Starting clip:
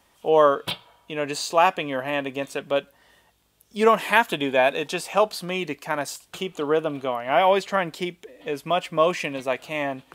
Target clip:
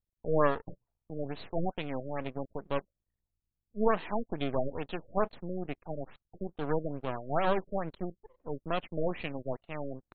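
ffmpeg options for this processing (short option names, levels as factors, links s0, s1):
-af "anlmdn=1.58,lowshelf=f=480:g=7,aresample=16000,aeval=exprs='max(val(0),0)':c=same,aresample=44100,afftfilt=real='re*lt(b*sr/1024,600*pow(4500/600,0.5+0.5*sin(2*PI*2.3*pts/sr)))':imag='im*lt(b*sr/1024,600*pow(4500/600,0.5+0.5*sin(2*PI*2.3*pts/sr)))':win_size=1024:overlap=0.75,volume=0.376"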